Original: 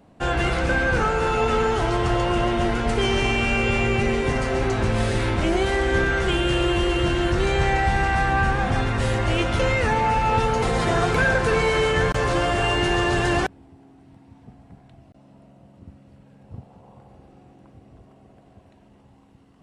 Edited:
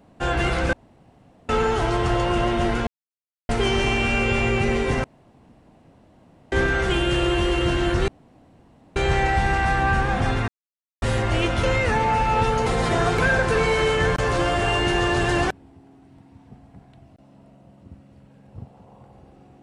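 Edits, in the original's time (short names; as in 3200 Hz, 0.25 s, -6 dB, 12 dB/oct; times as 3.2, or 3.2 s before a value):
0.73–1.49 room tone
2.87 insert silence 0.62 s
4.42–5.9 room tone
7.46 insert room tone 0.88 s
8.98 insert silence 0.54 s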